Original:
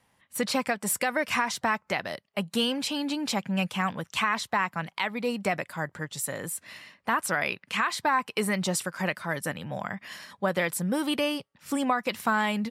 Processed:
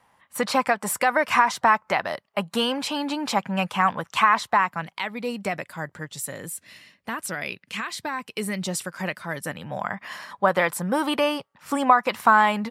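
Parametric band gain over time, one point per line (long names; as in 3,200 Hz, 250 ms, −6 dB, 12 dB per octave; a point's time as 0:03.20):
parametric band 1,000 Hz 1.7 octaves
0:04.46 +10.5 dB
0:04.96 −0.5 dB
0:06.11 −0.5 dB
0:06.67 −7 dB
0:08.46 −7 dB
0:08.87 −0.5 dB
0:09.42 −0.5 dB
0:10.07 +11.5 dB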